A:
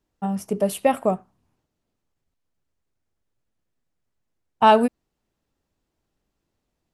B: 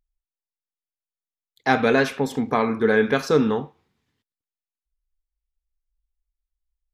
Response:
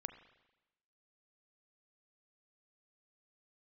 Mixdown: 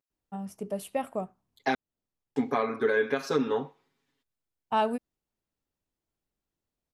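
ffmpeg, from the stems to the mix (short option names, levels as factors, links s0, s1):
-filter_complex "[0:a]adelay=100,volume=0.266[s0];[1:a]highpass=220,aecho=1:1:7.3:0.96,volume=0.596,asplit=3[s1][s2][s3];[s1]atrim=end=1.75,asetpts=PTS-STARTPTS,afade=t=out:st=1.746:d=0.004:c=hsin[s4];[s2]atrim=start=1.75:end=2.36,asetpts=PTS-STARTPTS,volume=0[s5];[s3]atrim=start=2.36,asetpts=PTS-STARTPTS,afade=t=in:d=0.004:c=hsin[s6];[s4][s5][s6]concat=n=3:v=0:a=1[s7];[s0][s7]amix=inputs=2:normalize=0,alimiter=limit=0.168:level=0:latency=1:release=308"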